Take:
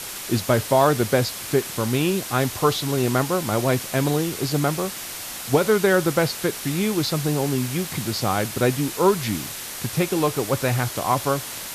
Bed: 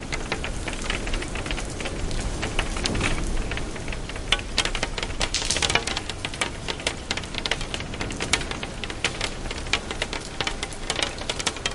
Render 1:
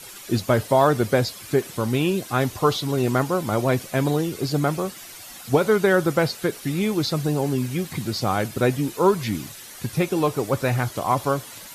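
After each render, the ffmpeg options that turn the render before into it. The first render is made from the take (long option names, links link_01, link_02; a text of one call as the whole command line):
ffmpeg -i in.wav -af "afftdn=noise_reduction=11:noise_floor=-34" out.wav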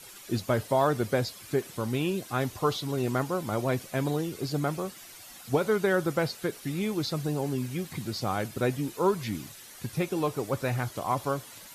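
ffmpeg -i in.wav -af "volume=-7dB" out.wav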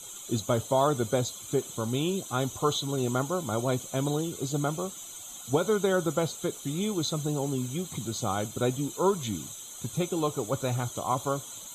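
ffmpeg -i in.wav -af "superequalizer=11b=0.282:12b=0.562:13b=1.78:14b=0.355:15b=3.55" out.wav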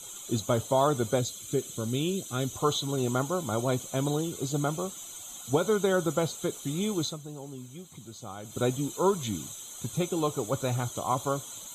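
ffmpeg -i in.wav -filter_complex "[0:a]asettb=1/sr,asplit=3[link_01][link_02][link_03];[link_01]atrim=end=1.194[link_04];[link_02]atrim=start=1.19:end=2.53,asetpts=PTS-STARTPTS,afade=type=in:duration=0.004:curve=qsin,afade=type=out:start_time=1.336:duration=0.004:curve=qsin,equalizer=frequency=910:width_type=o:width=0.85:gain=-11.5[link_05];[link_03]atrim=start=2.526[link_06];[link_04][link_05]acrossfade=duration=0.004:curve1=hsin:curve2=qsin[link_07];[link_07][link_06]acrossfade=duration=0.004:curve1=qsin:curve2=hsin,asplit=3[link_08][link_09][link_10];[link_08]atrim=end=7.18,asetpts=PTS-STARTPTS,afade=type=out:start_time=7.02:duration=0.16:silence=0.266073[link_11];[link_09]atrim=start=7.18:end=8.43,asetpts=PTS-STARTPTS,volume=-11.5dB[link_12];[link_10]atrim=start=8.43,asetpts=PTS-STARTPTS,afade=type=in:duration=0.16:silence=0.266073[link_13];[link_11][link_12][link_13]concat=n=3:v=0:a=1" out.wav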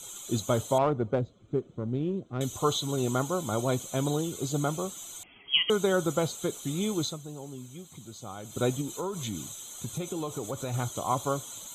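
ffmpeg -i in.wav -filter_complex "[0:a]asettb=1/sr,asplit=3[link_01][link_02][link_03];[link_01]atrim=end=0.784[link_04];[link_02]atrim=start=0.78:end=2.41,asetpts=PTS-STARTPTS,afade=type=in:duration=0.004:curve=qsin,afade=type=out:start_time=1.626:duration=0.004:curve=qsin,adynamicsmooth=sensitivity=0.5:basefreq=860[link_05];[link_03]atrim=start=2.406[link_06];[link_04][link_05]acrossfade=duration=0.004:curve1=hsin:curve2=qsin[link_07];[link_07][link_06]acrossfade=duration=0.004:curve1=qsin:curve2=hsin,asettb=1/sr,asplit=3[link_08][link_09][link_10];[link_08]atrim=end=5.234[link_11];[link_09]atrim=start=5.23:end=5.7,asetpts=PTS-STARTPTS,afade=type=in:duration=0.004:curve=qsin,afade=type=out:start_time=0.466:duration=0.004:curve=qsin,lowpass=frequency=2900:width_type=q:width=0.5098,lowpass=frequency=2900:width_type=q:width=0.6013,lowpass=frequency=2900:width_type=q:width=0.9,lowpass=frequency=2900:width_type=q:width=2.563,afreqshift=-3400[link_12];[link_10]atrim=start=5.696[link_13];[link_11][link_12]acrossfade=duration=0.004:curve1=hsin:curve2=qsin[link_14];[link_14][link_13]acrossfade=duration=0.004:curve1=qsin:curve2=hsin,asettb=1/sr,asplit=3[link_15][link_16][link_17];[link_15]atrim=end=8.814[link_18];[link_16]atrim=start=8.81:end=10.74,asetpts=PTS-STARTPTS,afade=type=in:duration=0.004:curve=qsin,afade=type=out:start_time=1.926:duration=0.004:curve=qsin,acompressor=threshold=-29dB:ratio=6:attack=3.2:release=140:knee=1:detection=peak[link_19];[link_17]atrim=start=10.736[link_20];[link_18][link_19]acrossfade=duration=0.004:curve1=hsin:curve2=qsin[link_21];[link_21][link_20]acrossfade=duration=0.004:curve1=qsin:curve2=hsin" out.wav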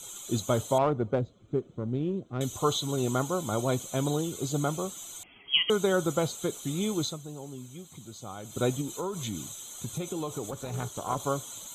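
ffmpeg -i in.wav -filter_complex "[0:a]asettb=1/sr,asplit=3[link_01][link_02][link_03];[link_01]atrim=end=10.504[link_04];[link_02]atrim=start=10.5:end=11.2,asetpts=PTS-STARTPTS,afade=type=in:duration=0.004:curve=qsin,afade=type=out:start_time=0.696:duration=0.004:curve=qsin,tremolo=f=300:d=0.667[link_05];[link_03]atrim=start=11.196[link_06];[link_04][link_05]acrossfade=duration=0.004:curve1=hsin:curve2=qsin[link_07];[link_07][link_06]acrossfade=duration=0.004:curve1=qsin:curve2=hsin" out.wav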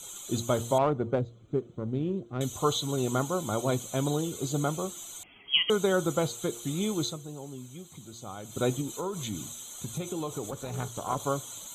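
ffmpeg -i in.wav -af "bandreject=frequency=5200:width=14,bandreject=frequency=117.3:width_type=h:width=4,bandreject=frequency=234.6:width_type=h:width=4,bandreject=frequency=351.9:width_type=h:width=4,bandreject=frequency=469.2:width_type=h:width=4" out.wav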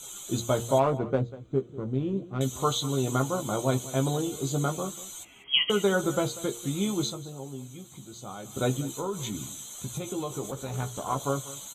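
ffmpeg -i in.wav -filter_complex "[0:a]asplit=2[link_01][link_02];[link_02]adelay=15,volume=-5.5dB[link_03];[link_01][link_03]amix=inputs=2:normalize=0,asplit=2[link_04][link_05];[link_05]adelay=192.4,volume=-17dB,highshelf=frequency=4000:gain=-4.33[link_06];[link_04][link_06]amix=inputs=2:normalize=0" out.wav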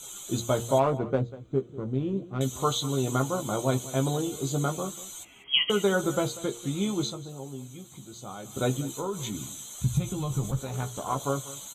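ffmpeg -i in.wav -filter_complex "[0:a]asettb=1/sr,asplit=3[link_01][link_02][link_03];[link_01]atrim=end=6.374[link_04];[link_02]atrim=start=6.37:end=7.3,asetpts=PTS-STARTPTS,afade=type=in:duration=0.004:curve=qsin,afade=type=out:start_time=0.926:duration=0.004:curve=qsin,highshelf=frequency=11000:gain=-10.5[link_05];[link_03]atrim=start=7.296[link_06];[link_04][link_05]acrossfade=duration=0.004:curve1=hsin:curve2=qsin[link_07];[link_07][link_06]acrossfade=duration=0.004:curve1=qsin:curve2=hsin,asplit=3[link_08][link_09][link_10];[link_08]afade=type=out:start_time=9.8:duration=0.02[link_11];[link_09]asubboost=boost=10:cutoff=120,afade=type=in:start_time=9.8:duration=0.02,afade=type=out:start_time=10.59:duration=0.02[link_12];[link_10]afade=type=in:start_time=10.59:duration=0.02[link_13];[link_11][link_12][link_13]amix=inputs=3:normalize=0" out.wav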